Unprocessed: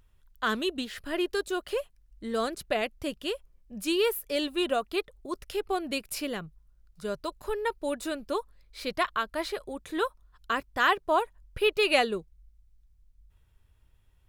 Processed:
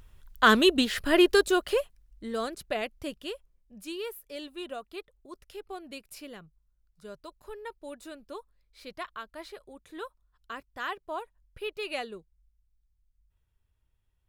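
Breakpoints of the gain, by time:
1.32 s +9 dB
2.4 s -3 dB
3.05 s -3 dB
3.99 s -11 dB

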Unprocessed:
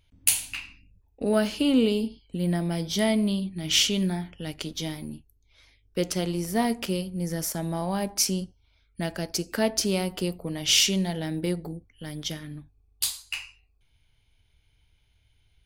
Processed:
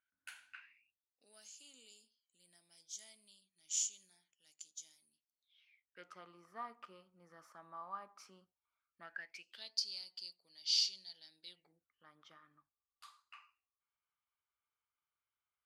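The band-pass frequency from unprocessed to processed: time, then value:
band-pass, Q 13
0.6 s 1500 Hz
1.34 s 6900 Hz
5.09 s 6900 Hz
6.14 s 1200 Hz
9.01 s 1200 Hz
9.73 s 4600 Hz
11.42 s 4600 Hz
11.9 s 1200 Hz

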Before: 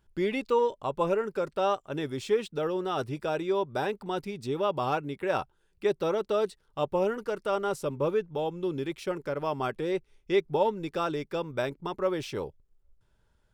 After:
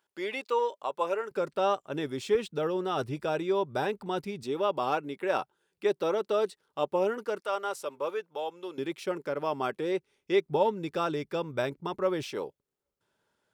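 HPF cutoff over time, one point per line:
520 Hz
from 1.31 s 140 Hz
from 2.35 s 62 Hz
from 4.43 s 230 Hz
from 7.4 s 600 Hz
from 8.78 s 190 Hz
from 10.49 s 69 Hz
from 12.23 s 250 Hz

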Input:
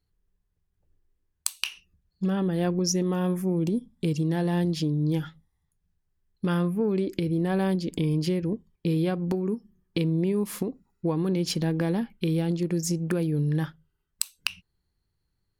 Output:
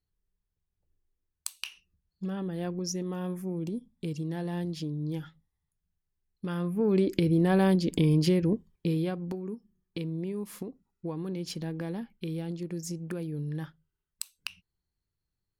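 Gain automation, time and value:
6.54 s -8 dB
6.96 s +2 dB
8.52 s +2 dB
9.39 s -9 dB

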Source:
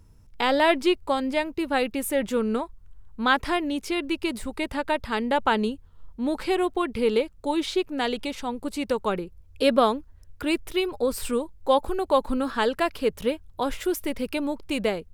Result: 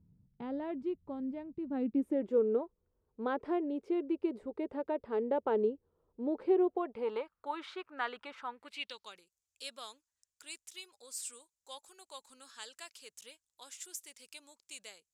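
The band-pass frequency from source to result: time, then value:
band-pass, Q 3
1.54 s 170 Hz
2.37 s 430 Hz
6.63 s 430 Hz
7.34 s 1300 Hz
8.44 s 1300 Hz
9.21 s 7100 Hz

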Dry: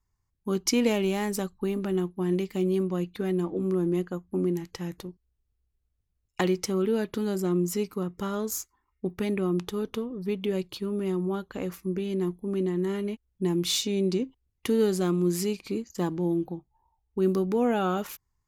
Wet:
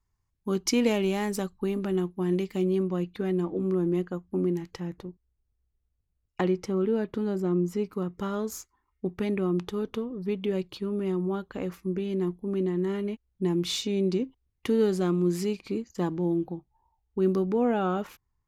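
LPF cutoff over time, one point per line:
LPF 6 dB/oct
7800 Hz
from 2.65 s 3800 Hz
from 4.8 s 1400 Hz
from 7.92 s 3600 Hz
from 17.51 s 2000 Hz

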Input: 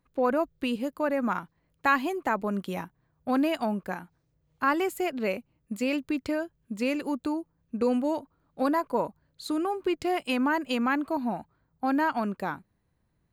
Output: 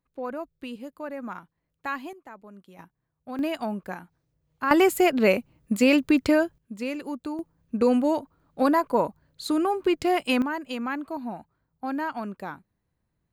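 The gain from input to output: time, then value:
-8 dB
from 2.13 s -17.5 dB
from 2.79 s -9.5 dB
from 3.39 s -1.5 dB
from 4.71 s +9 dB
from 6.58 s -3 dB
from 7.39 s +4.5 dB
from 10.42 s -4 dB

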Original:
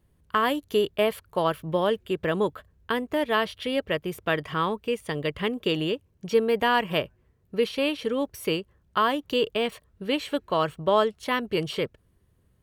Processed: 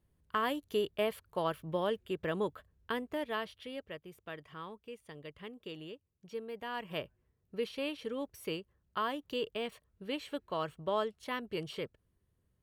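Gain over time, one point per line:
2.97 s -9 dB
4.09 s -19.5 dB
6.63 s -19.5 dB
7.03 s -11.5 dB

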